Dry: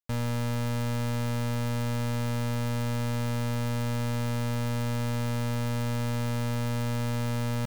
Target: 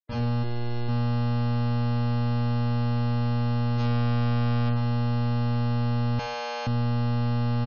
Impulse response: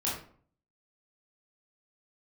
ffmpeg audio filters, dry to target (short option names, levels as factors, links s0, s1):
-filter_complex "[0:a]dynaudnorm=f=690:g=3:m=2.24,alimiter=level_in=1.41:limit=0.0631:level=0:latency=1,volume=0.708,asplit=3[s0][s1][s2];[s0]afade=t=out:st=3.76:d=0.02[s3];[s1]acontrast=21,afade=t=in:st=3.76:d=0.02,afade=t=out:st=4.66:d=0.02[s4];[s2]afade=t=in:st=4.66:d=0.02[s5];[s3][s4][s5]amix=inputs=3:normalize=0[s6];[1:a]atrim=start_sample=2205,afade=t=out:st=0.36:d=0.01,atrim=end_sample=16317[s7];[s6][s7]afir=irnorm=-1:irlink=0,asplit=3[s8][s9][s10];[s8]afade=t=out:st=0.42:d=0.02[s11];[s9]aeval=exprs='max(val(0),0)':c=same,afade=t=in:st=0.42:d=0.02,afade=t=out:st=0.88:d=0.02[s12];[s10]afade=t=in:st=0.88:d=0.02[s13];[s11][s12][s13]amix=inputs=3:normalize=0,asettb=1/sr,asplit=3[s14][s15][s16];[s14]atrim=end=6.194[s17];[s15]atrim=start=6.19:end=6.67,asetpts=PTS-STARTPTS,afade=t=in:d=0.004:c=qsin,afade=t=out:st=0.476:d=0.004:c=qsin,highpass=f=490:w=0.5412,highpass=f=490:w=1.3066[s18];[s16]atrim=start=6.666[s19];[s17][s18]acrossfade=d=0.004:c1=hsin:c2=qsin[s20];[s20][s19]acrossfade=d=0.004:c1=qsin:c2=hsin,asoftclip=type=tanh:threshold=0.0944,highshelf=f=6500:t=q:w=1.5:g=-8.5,asplit=2[s21][s22];[s22]adelay=74,lowpass=f=2000:p=1,volume=0.141,asplit=2[s23][s24];[s24]adelay=74,lowpass=f=2000:p=1,volume=0.34,asplit=2[s25][s26];[s26]adelay=74,lowpass=f=2000:p=1,volume=0.34[s27];[s21][s23][s25][s27]amix=inputs=4:normalize=0,afftfilt=real='re*gte(hypot(re,im),0.0112)':imag='im*gte(hypot(re,im),0.0112)':win_size=1024:overlap=0.75,volume=0.841"